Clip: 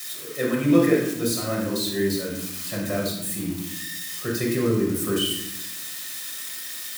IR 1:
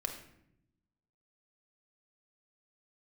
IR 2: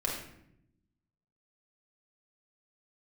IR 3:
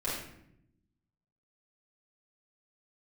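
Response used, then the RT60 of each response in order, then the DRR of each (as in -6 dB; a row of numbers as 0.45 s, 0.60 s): 2; 0.75 s, 0.75 s, 0.75 s; 3.5 dB, -3.0 dB, -9.0 dB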